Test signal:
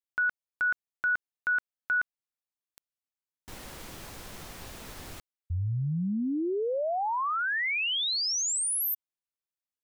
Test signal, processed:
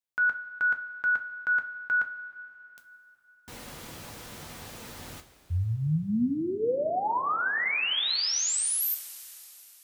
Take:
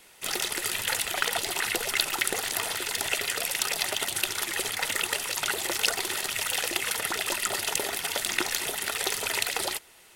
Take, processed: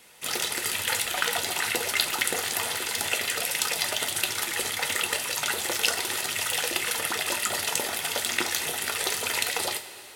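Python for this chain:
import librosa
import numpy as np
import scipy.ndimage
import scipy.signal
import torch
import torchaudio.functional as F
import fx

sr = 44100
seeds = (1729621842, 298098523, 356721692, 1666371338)

y = scipy.signal.sosfilt(scipy.signal.butter(2, 43.0, 'highpass', fs=sr, output='sos'), x)
y = fx.rev_double_slope(y, sr, seeds[0], early_s=0.25, late_s=3.6, knee_db=-18, drr_db=5.0)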